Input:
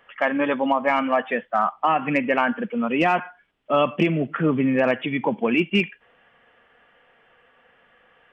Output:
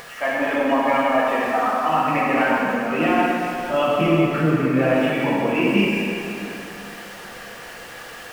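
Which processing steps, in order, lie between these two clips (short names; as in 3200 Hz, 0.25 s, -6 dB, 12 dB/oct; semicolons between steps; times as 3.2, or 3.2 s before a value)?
zero-crossing step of -34 dBFS; plate-style reverb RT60 3 s, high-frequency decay 0.75×, DRR -7.5 dB; upward compressor, threshold -30 dBFS; gain -6.5 dB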